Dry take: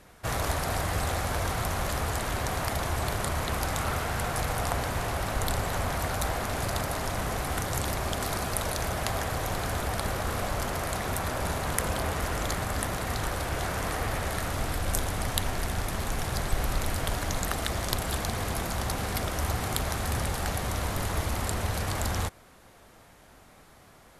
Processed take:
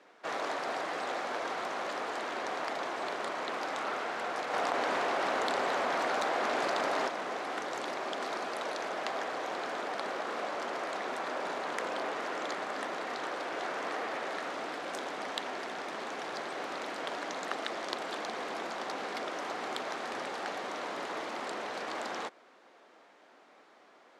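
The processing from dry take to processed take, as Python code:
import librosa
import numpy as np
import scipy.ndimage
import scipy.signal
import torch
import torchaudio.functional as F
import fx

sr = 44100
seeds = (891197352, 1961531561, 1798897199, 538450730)

y = scipy.signal.sosfilt(scipy.signal.butter(4, 290.0, 'highpass', fs=sr, output='sos'), x)
y = fx.air_absorb(y, sr, metres=140.0)
y = fx.env_flatten(y, sr, amount_pct=100, at=(4.52, 7.07), fade=0.02)
y = y * 10.0 ** (-2.0 / 20.0)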